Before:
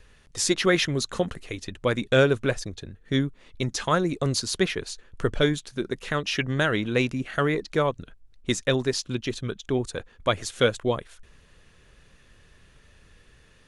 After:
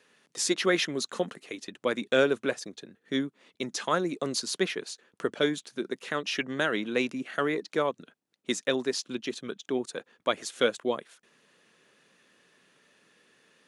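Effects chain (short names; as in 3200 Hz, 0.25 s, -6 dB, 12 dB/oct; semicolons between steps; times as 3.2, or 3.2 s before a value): HPF 200 Hz 24 dB/oct; gain -3.5 dB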